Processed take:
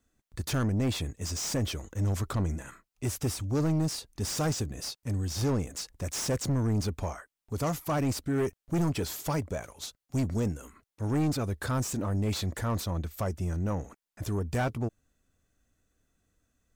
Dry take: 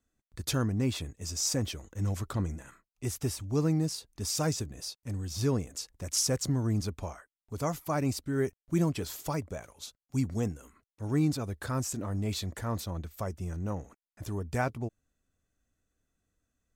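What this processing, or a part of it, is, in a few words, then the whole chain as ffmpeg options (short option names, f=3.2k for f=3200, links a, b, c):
saturation between pre-emphasis and de-emphasis: -af "highshelf=f=3k:g=11,asoftclip=type=tanh:threshold=-29dB,highshelf=f=3k:g=-11,volume=6dB"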